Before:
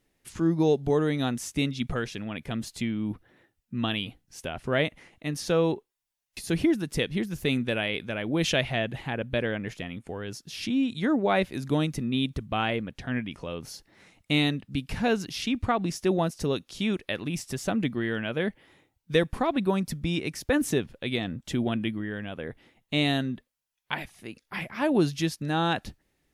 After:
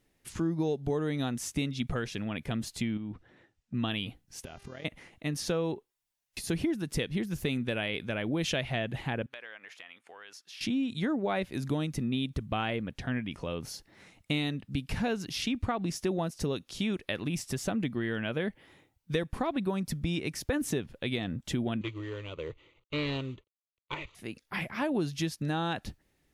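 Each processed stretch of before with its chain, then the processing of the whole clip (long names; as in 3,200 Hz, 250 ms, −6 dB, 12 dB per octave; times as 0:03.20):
0:02.97–0:03.74: low-pass filter 7,900 Hz 24 dB per octave + downward compressor 4 to 1, threshold −36 dBFS
0:04.44–0:04.84: amplitude modulation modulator 40 Hz, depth 60% + downward compressor, threshold −42 dBFS + hum with harmonics 400 Hz, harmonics 17, −62 dBFS −3 dB per octave
0:09.26–0:10.61: high-pass filter 1,100 Hz + high-shelf EQ 5,300 Hz −10.5 dB + downward compressor 2.5 to 1, threshold −45 dBFS
0:21.81–0:24.15: variable-slope delta modulation 32 kbit/s + phaser with its sweep stopped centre 1,100 Hz, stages 8 + highs frequency-modulated by the lows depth 0.15 ms
whole clip: downward compressor 3 to 1, threshold −29 dBFS; parametric band 93 Hz +2 dB 2 octaves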